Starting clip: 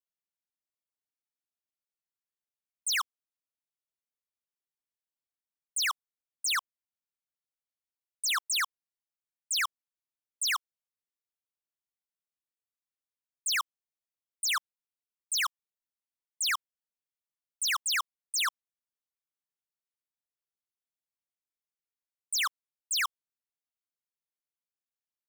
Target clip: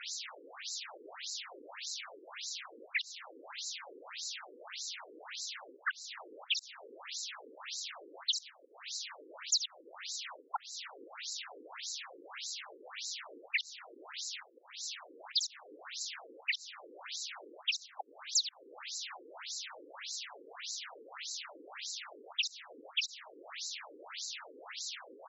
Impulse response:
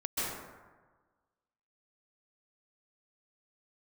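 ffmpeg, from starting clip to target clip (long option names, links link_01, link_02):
-filter_complex "[0:a]aeval=exprs='val(0)+0.5*0.00668*sgn(val(0))':channel_layout=same,asettb=1/sr,asplit=3[link_01][link_02][link_03];[link_01]atrim=end=13.484[link_04];[link_02]atrim=start=13.48:end=15.4,asetpts=PTS-STARTPTS,afade=type=in:duration=0.004:curve=qsin,afade=type=out:start_time=1.916:duration=0.004:curve=qsin,acrossover=split=4600[link_05][link_06];[link_06]acompressor=threshold=-38dB:ratio=4:attack=1:release=60[link_07];[link_05][link_07]amix=inputs=2:normalize=0[link_08];[link_03]atrim=start=15.396[link_09];[link_04][link_08]acrossfade=duration=0.004:curve1=hsin:curve2=qsin[link_10];[link_10][link_09]acrossfade=duration=0.004:curve1=qsin:curve2=hsin,highshelf=frequency=3600:gain=4.5,asplit=2[link_11][link_12];[link_12]alimiter=level_in=7.5dB:limit=-24dB:level=0:latency=1:release=48,volume=-7.5dB,volume=-2dB[link_13];[link_11][link_13]amix=inputs=2:normalize=0,acompressor=threshold=-38dB:ratio=20,aeval=exprs='val(0)*sin(2*PI*310*n/s)':channel_layout=same,acrusher=bits=8:mix=0:aa=0.5,asplit=2[link_14][link_15];[link_15]aecho=0:1:676:0.112[link_16];[link_14][link_16]amix=inputs=2:normalize=0,afftfilt=real='re*between(b*sr/1024,360*pow(5500/360,0.5+0.5*sin(2*PI*1.7*pts/sr))/1.41,360*pow(5500/360,0.5+0.5*sin(2*PI*1.7*pts/sr))*1.41)':imag='im*between(b*sr/1024,360*pow(5500/360,0.5+0.5*sin(2*PI*1.7*pts/sr))/1.41,360*pow(5500/360,0.5+0.5*sin(2*PI*1.7*pts/sr))*1.41)':win_size=1024:overlap=0.75,volume=16dB"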